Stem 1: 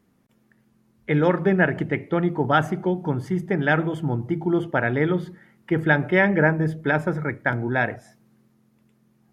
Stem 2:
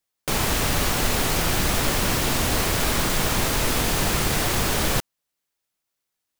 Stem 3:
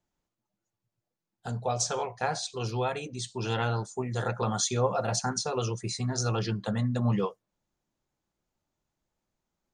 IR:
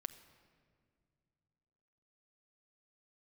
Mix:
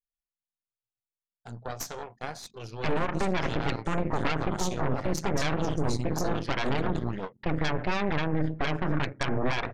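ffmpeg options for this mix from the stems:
-filter_complex "[0:a]acompressor=threshold=-21dB:ratio=6,lowpass=2.6k,aecho=1:1:7.3:0.33,adelay=1750,volume=-0.5dB[a];[2:a]volume=-8.5dB[b];[a][b]amix=inputs=2:normalize=0,aeval=exprs='0.316*(cos(1*acos(clip(val(0)/0.316,-1,1)))-cos(1*PI/2))+0.158*(cos(6*acos(clip(val(0)/0.316,-1,1)))-cos(6*PI/2))+0.00398*(cos(7*acos(clip(val(0)/0.316,-1,1)))-cos(7*PI/2))':c=same,alimiter=limit=-16.5dB:level=0:latency=1:release=39,volume=0dB,anlmdn=0.000398"

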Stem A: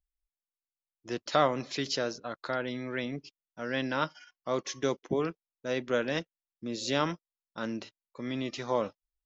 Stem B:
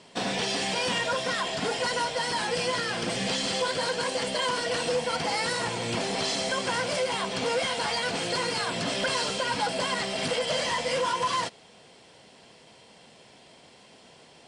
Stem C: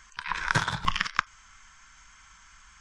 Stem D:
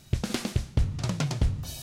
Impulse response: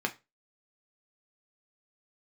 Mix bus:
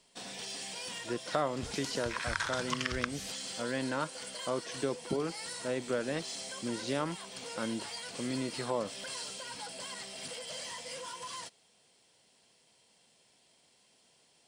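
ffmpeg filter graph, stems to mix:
-filter_complex "[0:a]lowpass=f=1.9k:p=1,volume=1dB[a];[1:a]aemphasis=mode=production:type=75fm,volume=-17.5dB[b];[2:a]highpass=1.1k,adelay=1850,volume=-2.5dB[c];[3:a]equalizer=f=6.2k:w=0.75:g=14.5,adelay=1500,volume=-15.5dB[d];[a][b][c][d]amix=inputs=4:normalize=0,acompressor=threshold=-32dB:ratio=2"

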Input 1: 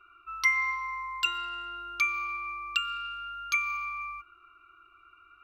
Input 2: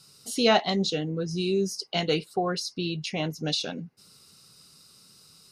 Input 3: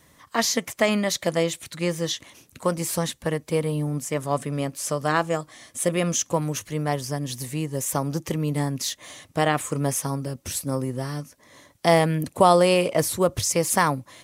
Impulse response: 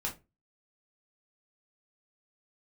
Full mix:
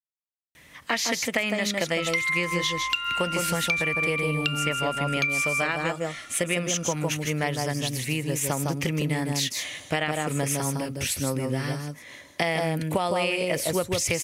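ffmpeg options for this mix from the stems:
-filter_complex "[0:a]acompressor=threshold=-31dB:ratio=6,adelay=1700,volume=2.5dB,asplit=2[a][b];[b]volume=-7.5dB[c];[2:a]equalizer=f=1.1k:w=7.2:g=-6.5,adelay=550,volume=0dB,asplit=2[d][e];[e]volume=-3.5dB[f];[a][d]amix=inputs=2:normalize=0,equalizer=f=2.4k:t=o:w=1.1:g=13,alimiter=limit=-6dB:level=0:latency=1:release=464,volume=0dB[g];[3:a]atrim=start_sample=2205[h];[c][h]afir=irnorm=-1:irlink=0[i];[f]aecho=0:1:157:1[j];[g][i][j]amix=inputs=3:normalize=0,acompressor=threshold=-22dB:ratio=6"

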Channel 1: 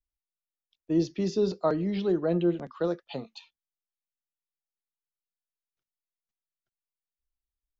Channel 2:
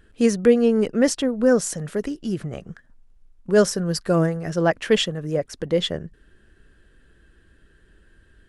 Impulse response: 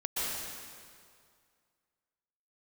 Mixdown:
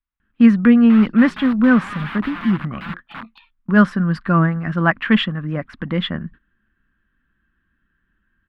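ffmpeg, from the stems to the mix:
-filter_complex "[0:a]alimiter=limit=-21dB:level=0:latency=1:release=85,aeval=exprs='(mod(39.8*val(0)+1,2)-1)/39.8':c=same,volume=1.5dB[a];[1:a]agate=range=-17dB:threshold=-44dB:ratio=16:detection=peak,adelay=200,volume=2dB[b];[a][b]amix=inputs=2:normalize=0,firequalizer=gain_entry='entry(120,0);entry(220,9);entry(430,-12);entry(1100,10);entry(3500,-3);entry(6000,-26)':delay=0.05:min_phase=1"

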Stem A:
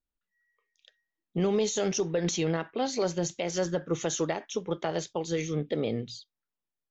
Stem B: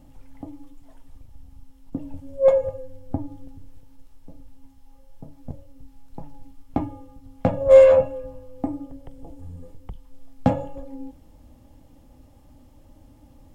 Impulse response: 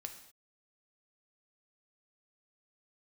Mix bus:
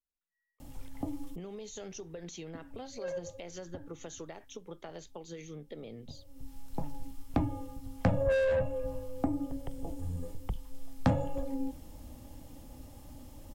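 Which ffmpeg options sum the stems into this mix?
-filter_complex "[0:a]bandreject=f=5.4k:w=16,acompressor=threshold=-30dB:ratio=6,volume=-10.5dB,asplit=2[a][b];[1:a]highshelf=f=3.7k:g=8.5,asoftclip=type=tanh:threshold=-15.5dB,adelay=600,volume=2dB[c];[b]apad=whole_len=623714[d];[c][d]sidechaincompress=threshold=-59dB:ratio=12:attack=5.3:release=390[e];[a][e]amix=inputs=2:normalize=0,acrossover=split=180[f][g];[g]acompressor=threshold=-32dB:ratio=2.5[h];[f][h]amix=inputs=2:normalize=0"

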